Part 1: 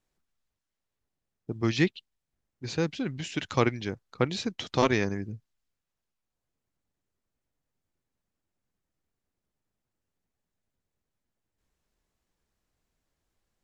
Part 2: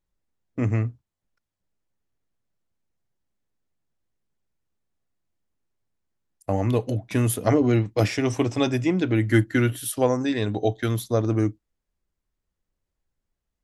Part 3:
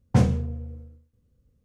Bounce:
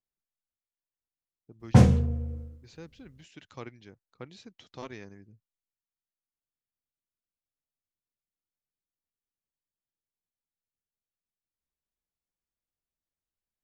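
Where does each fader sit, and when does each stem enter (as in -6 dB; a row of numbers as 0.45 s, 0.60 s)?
-18.0 dB, mute, +2.5 dB; 0.00 s, mute, 1.60 s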